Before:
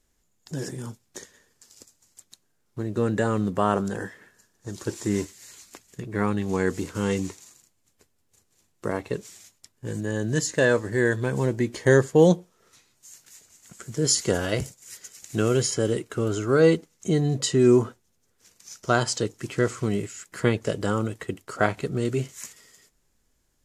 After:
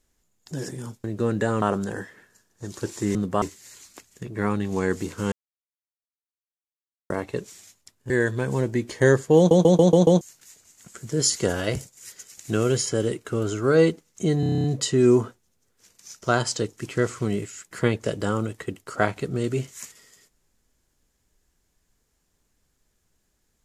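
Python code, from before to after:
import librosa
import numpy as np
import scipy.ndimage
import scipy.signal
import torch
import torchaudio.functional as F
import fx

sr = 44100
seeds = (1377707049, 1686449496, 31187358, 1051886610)

y = fx.edit(x, sr, fx.cut(start_s=1.04, length_s=1.77),
    fx.move(start_s=3.39, length_s=0.27, to_s=5.19),
    fx.silence(start_s=7.09, length_s=1.78),
    fx.cut(start_s=9.87, length_s=1.08),
    fx.stutter_over(start_s=12.22, slice_s=0.14, count=6),
    fx.stutter(start_s=17.25, slice_s=0.03, count=9), tone=tone)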